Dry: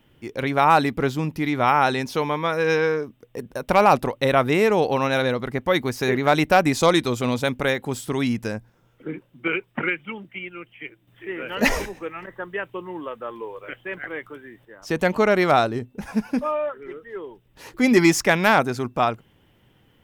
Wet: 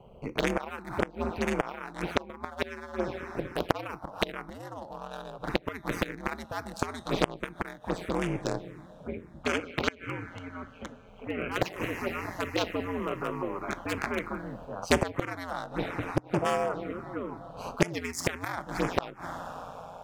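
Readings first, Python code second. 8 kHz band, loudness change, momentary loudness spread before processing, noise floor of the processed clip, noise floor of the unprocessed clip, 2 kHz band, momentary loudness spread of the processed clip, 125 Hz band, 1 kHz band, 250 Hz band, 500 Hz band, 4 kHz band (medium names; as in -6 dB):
-8.5 dB, -11.5 dB, 18 LU, -52 dBFS, -60 dBFS, -10.0 dB, 11 LU, -8.5 dB, -12.0 dB, -10.0 dB, -10.5 dB, -8.0 dB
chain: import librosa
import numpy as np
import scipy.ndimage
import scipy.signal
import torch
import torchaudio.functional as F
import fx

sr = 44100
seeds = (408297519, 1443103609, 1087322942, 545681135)

y = fx.wiener(x, sr, points=25)
y = scipy.signal.sosfilt(scipy.signal.butter(2, 200.0, 'highpass', fs=sr, output='sos'), y)
y = fx.dynamic_eq(y, sr, hz=520.0, q=0.75, threshold_db=-31.0, ratio=4.0, max_db=4)
y = fx.rev_double_slope(y, sr, seeds[0], early_s=0.34, late_s=3.9, knee_db=-17, drr_db=15.0)
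y = fx.gate_flip(y, sr, shuts_db=-12.0, range_db=-28)
y = y * np.sin(2.0 * np.pi * 88.0 * np.arange(len(y)) / sr)
y = fx.env_phaser(y, sr, low_hz=290.0, high_hz=4000.0, full_db=-24.5)
y = fx.rider(y, sr, range_db=10, speed_s=2.0)
y = fx.spectral_comp(y, sr, ratio=2.0)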